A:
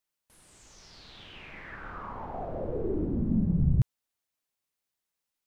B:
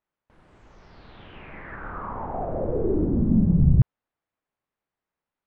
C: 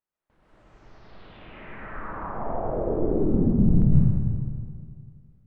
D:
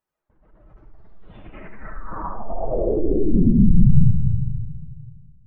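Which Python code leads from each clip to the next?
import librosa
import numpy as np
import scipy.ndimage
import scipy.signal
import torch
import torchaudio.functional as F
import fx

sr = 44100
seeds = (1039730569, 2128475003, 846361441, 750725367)

y1 = scipy.signal.sosfilt(scipy.signal.butter(2, 1600.0, 'lowpass', fs=sr, output='sos'), x)
y1 = y1 * librosa.db_to_amplitude(7.0)
y2 = fx.rev_freeverb(y1, sr, rt60_s=2.1, hf_ratio=0.6, predelay_ms=90, drr_db=-8.0)
y2 = y2 * librosa.db_to_amplitude(-8.5)
y3 = fx.spec_expand(y2, sr, power=1.8)
y3 = y3 + 10.0 ** (-9.0 / 20.0) * np.pad(y3, (int(70 * sr / 1000.0), 0))[:len(y3)]
y3 = y3 * librosa.db_to_amplitude(6.0)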